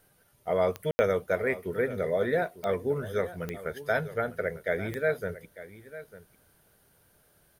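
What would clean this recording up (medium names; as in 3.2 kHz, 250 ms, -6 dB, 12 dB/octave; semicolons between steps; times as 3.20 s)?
de-click; room tone fill 0.91–0.99 s; inverse comb 899 ms -15.5 dB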